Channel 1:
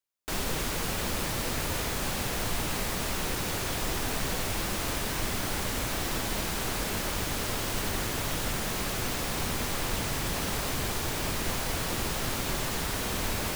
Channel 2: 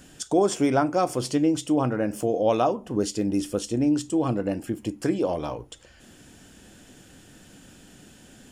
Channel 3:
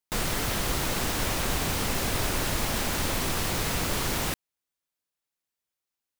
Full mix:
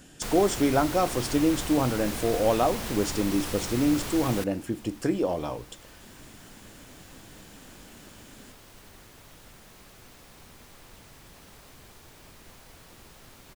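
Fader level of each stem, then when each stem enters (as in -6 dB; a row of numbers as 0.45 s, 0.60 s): -20.0 dB, -1.5 dB, -6.5 dB; 1.00 s, 0.00 s, 0.10 s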